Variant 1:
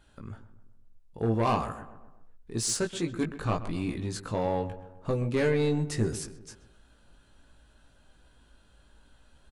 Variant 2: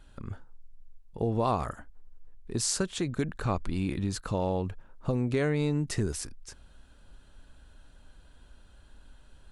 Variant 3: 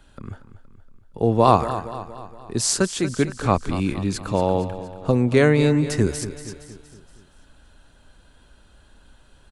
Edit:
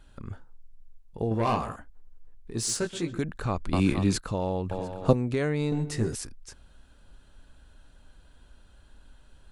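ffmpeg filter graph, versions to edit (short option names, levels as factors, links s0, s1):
-filter_complex "[0:a]asplit=3[s0][s1][s2];[2:a]asplit=2[s3][s4];[1:a]asplit=6[s5][s6][s7][s8][s9][s10];[s5]atrim=end=1.312[s11];[s0]atrim=start=1.308:end=1.762[s12];[s6]atrim=start=1.758:end=2.512[s13];[s1]atrim=start=2.508:end=3.182[s14];[s7]atrim=start=3.178:end=3.732[s15];[s3]atrim=start=3.728:end=4.182[s16];[s8]atrim=start=4.178:end=4.712[s17];[s4]atrim=start=4.708:end=5.132[s18];[s9]atrim=start=5.128:end=5.722[s19];[s2]atrim=start=5.718:end=6.152[s20];[s10]atrim=start=6.148[s21];[s11][s12]acrossfade=d=0.004:c1=hsin:c2=hsin[s22];[s22][s13]acrossfade=d=0.004:c1=hsin:c2=hsin[s23];[s23][s14]acrossfade=d=0.004:c1=hsin:c2=hsin[s24];[s24][s15]acrossfade=d=0.004:c1=hsin:c2=hsin[s25];[s25][s16]acrossfade=d=0.004:c1=hsin:c2=hsin[s26];[s26][s17]acrossfade=d=0.004:c1=hsin:c2=hsin[s27];[s27][s18]acrossfade=d=0.004:c1=hsin:c2=hsin[s28];[s28][s19]acrossfade=d=0.004:c1=hsin:c2=hsin[s29];[s29][s20]acrossfade=d=0.004:c1=hsin:c2=hsin[s30];[s30][s21]acrossfade=d=0.004:c1=hsin:c2=hsin"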